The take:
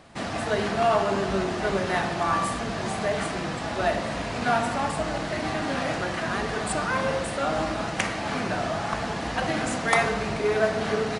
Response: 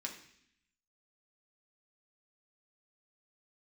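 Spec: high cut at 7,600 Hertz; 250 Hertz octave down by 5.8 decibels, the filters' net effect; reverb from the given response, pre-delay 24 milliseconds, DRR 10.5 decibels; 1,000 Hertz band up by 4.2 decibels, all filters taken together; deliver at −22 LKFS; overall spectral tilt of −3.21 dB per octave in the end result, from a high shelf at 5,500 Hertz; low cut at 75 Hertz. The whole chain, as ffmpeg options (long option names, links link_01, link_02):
-filter_complex "[0:a]highpass=75,lowpass=7600,equalizer=frequency=250:width_type=o:gain=-8.5,equalizer=frequency=1000:width_type=o:gain=6,highshelf=frequency=5500:gain=8,asplit=2[link_01][link_02];[1:a]atrim=start_sample=2205,adelay=24[link_03];[link_02][link_03]afir=irnorm=-1:irlink=0,volume=-10dB[link_04];[link_01][link_04]amix=inputs=2:normalize=0,volume=2dB"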